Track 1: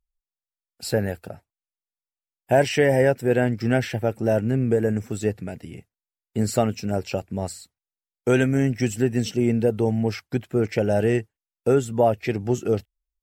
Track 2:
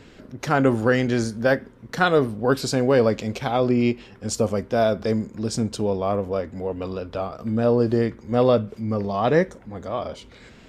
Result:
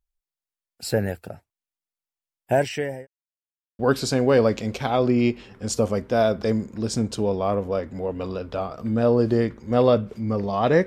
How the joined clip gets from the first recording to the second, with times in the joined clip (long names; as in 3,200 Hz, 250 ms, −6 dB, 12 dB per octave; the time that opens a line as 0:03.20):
track 1
0:02.41–0:03.07: fade out linear
0:03.07–0:03.79: silence
0:03.79: continue with track 2 from 0:02.40